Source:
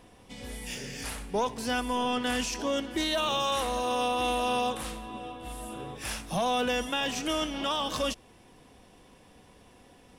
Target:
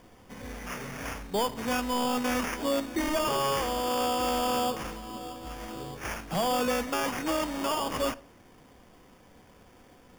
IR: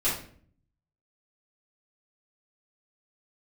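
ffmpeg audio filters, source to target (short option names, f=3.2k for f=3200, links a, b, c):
-filter_complex "[0:a]acrusher=samples=11:mix=1:aa=0.000001,asplit=2[a][b];[1:a]atrim=start_sample=2205[c];[b][c]afir=irnorm=-1:irlink=0,volume=-25.5dB[d];[a][d]amix=inputs=2:normalize=0"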